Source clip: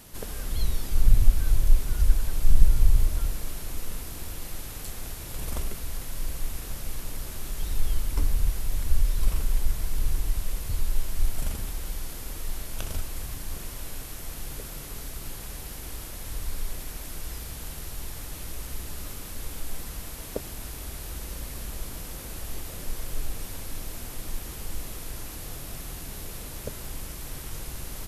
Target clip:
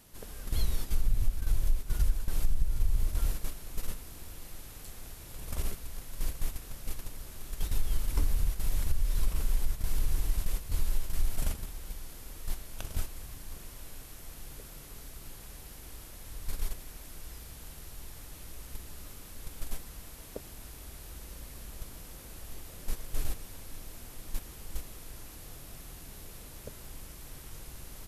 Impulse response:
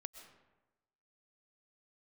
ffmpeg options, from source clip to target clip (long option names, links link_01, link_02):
-af "acompressor=threshold=-21dB:ratio=5,agate=range=-9dB:threshold=-27dB:ratio=16:detection=peak"